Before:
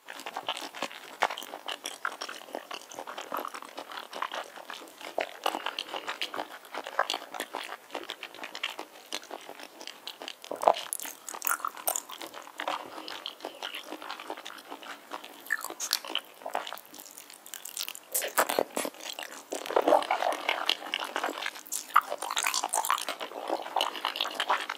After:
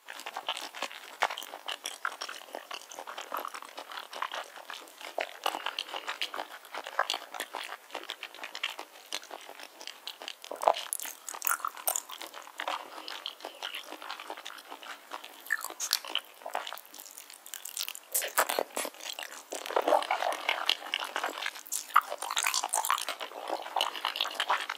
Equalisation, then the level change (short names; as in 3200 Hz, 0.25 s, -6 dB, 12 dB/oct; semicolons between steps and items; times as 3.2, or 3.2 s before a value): HPF 640 Hz 6 dB/oct; 0.0 dB